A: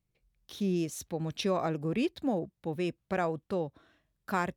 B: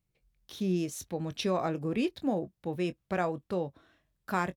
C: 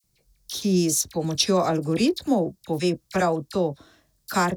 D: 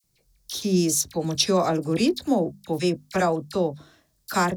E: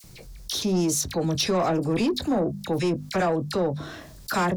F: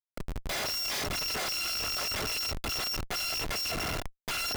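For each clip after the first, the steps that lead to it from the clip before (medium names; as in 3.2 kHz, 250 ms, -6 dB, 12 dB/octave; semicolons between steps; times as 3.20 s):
doubling 22 ms -13 dB
resonant high shelf 3.7 kHz +8.5 dB, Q 1.5; phase dispersion lows, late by 41 ms, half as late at 1.6 kHz; trim +8.5 dB
hum notches 50/100/150/200/250 Hz
treble shelf 4.4 kHz -8 dB; saturation -18 dBFS, distortion -14 dB; level flattener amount 50%
bit-reversed sample order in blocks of 256 samples; elliptic band-pass 430–5600 Hz, stop band 40 dB; Schmitt trigger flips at -42 dBFS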